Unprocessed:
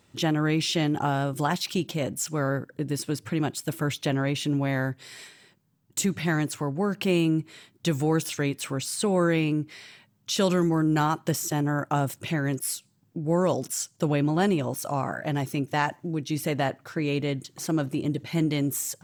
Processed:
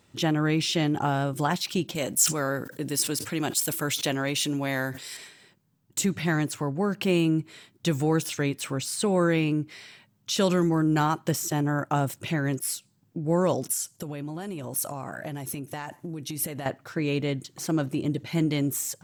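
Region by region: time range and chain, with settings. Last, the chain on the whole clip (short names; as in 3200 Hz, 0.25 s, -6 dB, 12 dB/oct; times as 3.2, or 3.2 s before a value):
1.95–5.17 HPF 250 Hz 6 dB/oct + high shelf 4200 Hz +11.5 dB + sustainer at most 100 dB/s
13.69–16.66 compressor 12:1, threshold -30 dBFS + bell 11000 Hz +12.5 dB 0.73 oct
whole clip: dry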